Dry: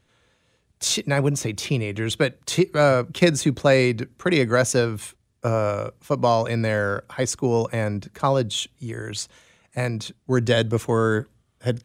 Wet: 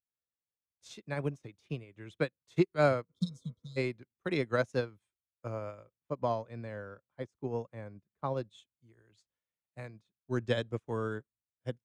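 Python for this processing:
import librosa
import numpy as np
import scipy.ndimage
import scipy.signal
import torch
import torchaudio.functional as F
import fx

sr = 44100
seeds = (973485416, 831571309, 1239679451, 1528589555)

y = fx.spec_repair(x, sr, seeds[0], start_s=3.1, length_s=0.64, low_hz=250.0, high_hz=3100.0, source='before')
y = fx.high_shelf(y, sr, hz=2300.0, db=-7.0, at=(5.84, 8.37))
y = fx.wow_flutter(y, sr, seeds[1], rate_hz=2.1, depth_cents=29.0)
y = fx.high_shelf(y, sr, hz=6100.0, db=-11.0)
y = fx.upward_expand(y, sr, threshold_db=-38.0, expansion=2.5)
y = y * 10.0 ** (-6.0 / 20.0)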